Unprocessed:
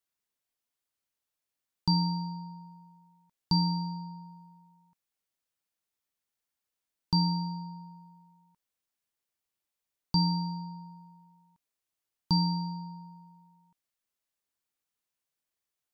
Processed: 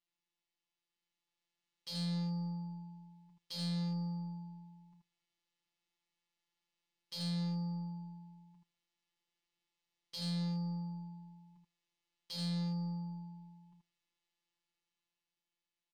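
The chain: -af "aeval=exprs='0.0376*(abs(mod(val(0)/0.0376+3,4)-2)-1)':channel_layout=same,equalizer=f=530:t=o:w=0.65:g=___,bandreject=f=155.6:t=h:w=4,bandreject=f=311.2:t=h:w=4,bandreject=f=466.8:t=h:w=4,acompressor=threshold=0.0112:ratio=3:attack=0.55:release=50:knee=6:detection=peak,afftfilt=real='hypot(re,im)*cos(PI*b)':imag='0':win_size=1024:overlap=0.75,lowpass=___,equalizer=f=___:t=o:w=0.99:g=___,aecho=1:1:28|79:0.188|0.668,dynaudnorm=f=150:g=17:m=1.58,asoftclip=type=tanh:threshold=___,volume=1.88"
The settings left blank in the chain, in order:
-9.5, 3800, 1400, -9, 0.015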